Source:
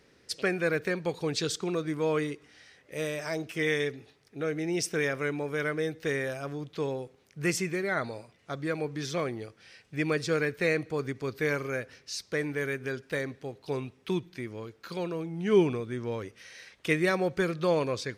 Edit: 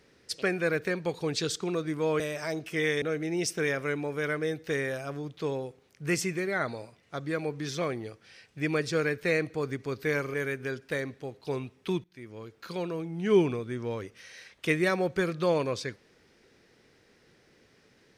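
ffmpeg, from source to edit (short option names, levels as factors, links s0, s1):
-filter_complex "[0:a]asplit=5[s0][s1][s2][s3][s4];[s0]atrim=end=2.202[s5];[s1]atrim=start=3.028:end=3.852[s6];[s2]atrim=start=4.378:end=11.702[s7];[s3]atrim=start=12.548:end=14.25,asetpts=PTS-STARTPTS,afade=t=out:st=1.698:d=0.004:c=hsin:silence=0.112202[s8];[s4]atrim=start=14.25,asetpts=PTS-STARTPTS,afade=t=in:d=0.54:silence=0.112202[s9];[s5][s6]acrossfade=d=0.004:c1=hsin:c2=hsin[s10];[s10][s7]acrossfade=d=0.004:c1=hsin:c2=hsin[s11];[s8][s9]concat=n=2:v=0:a=1[s12];[s11][s12]acrossfade=d=0.004:c1=hsin:c2=hsin"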